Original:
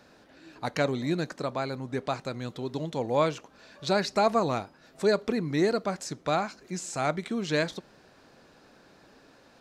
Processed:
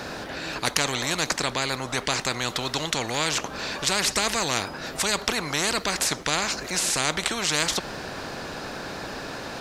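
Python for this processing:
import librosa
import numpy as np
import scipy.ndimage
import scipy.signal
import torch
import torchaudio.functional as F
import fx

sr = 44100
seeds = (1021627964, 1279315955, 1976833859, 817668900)

y = fx.spectral_comp(x, sr, ratio=4.0)
y = y * 10.0 ** (8.0 / 20.0)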